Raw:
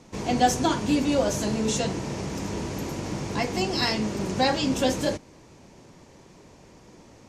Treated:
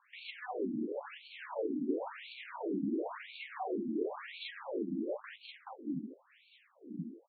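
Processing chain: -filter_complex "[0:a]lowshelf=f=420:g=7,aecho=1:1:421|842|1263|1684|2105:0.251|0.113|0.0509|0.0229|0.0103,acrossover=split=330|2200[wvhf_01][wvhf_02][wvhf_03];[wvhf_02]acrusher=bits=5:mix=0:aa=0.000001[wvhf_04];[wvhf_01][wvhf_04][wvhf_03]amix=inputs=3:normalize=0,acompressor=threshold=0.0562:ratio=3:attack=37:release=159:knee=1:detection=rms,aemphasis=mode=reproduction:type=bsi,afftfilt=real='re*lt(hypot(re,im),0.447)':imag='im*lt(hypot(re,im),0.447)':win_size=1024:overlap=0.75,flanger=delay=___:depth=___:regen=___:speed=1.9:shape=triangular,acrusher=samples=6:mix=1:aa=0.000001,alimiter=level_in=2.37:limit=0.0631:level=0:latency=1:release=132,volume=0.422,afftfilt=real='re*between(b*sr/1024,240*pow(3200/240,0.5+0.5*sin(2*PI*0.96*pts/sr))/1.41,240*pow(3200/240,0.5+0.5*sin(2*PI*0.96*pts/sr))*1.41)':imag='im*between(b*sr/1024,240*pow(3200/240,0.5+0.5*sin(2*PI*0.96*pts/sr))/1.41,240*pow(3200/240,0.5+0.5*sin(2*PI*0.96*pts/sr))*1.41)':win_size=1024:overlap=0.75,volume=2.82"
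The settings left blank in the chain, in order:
6.5, 7.2, 49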